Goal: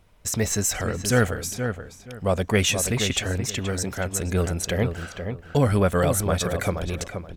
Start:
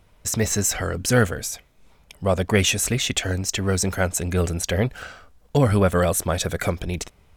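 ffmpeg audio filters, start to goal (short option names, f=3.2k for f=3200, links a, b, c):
-filter_complex "[0:a]asettb=1/sr,asplit=3[a][b][c];[a]atrim=end=3.454[d];[b]atrim=start=3.45:end=4.14,asetpts=PTS-STARTPTS,afade=t=in:d=0.004:c=qsin,afade=t=out:st=0.686:d=0.004:c=qsin,acompressor=threshold=-28dB:ratio=1.5[e];[c]atrim=start=4.136[f];[d][e]acrossfade=d=0.004:c1=hsin:c2=qsin[g];[g][f]acrossfade=d=0.004:c1=qsin:c2=hsin,asplit=2[h][i];[i]adelay=476,lowpass=f=2.2k:p=1,volume=-7dB,asplit=2[j][k];[k]adelay=476,lowpass=f=2.2k:p=1,volume=0.23,asplit=2[l][m];[m]adelay=476,lowpass=f=2.2k:p=1,volume=0.23[n];[h][j][l][n]amix=inputs=4:normalize=0,volume=-2dB"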